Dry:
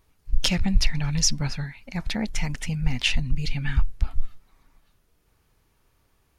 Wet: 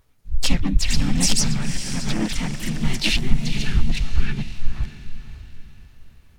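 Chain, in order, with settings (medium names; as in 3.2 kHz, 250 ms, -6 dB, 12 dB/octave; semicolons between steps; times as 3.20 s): chunks repeated in reverse 443 ms, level -0.5 dB; echo that smears into a reverb 531 ms, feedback 40%, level -10.5 dB; harmony voices -3 st -8 dB, +5 st -7 dB, +7 st -4 dB; trim -2 dB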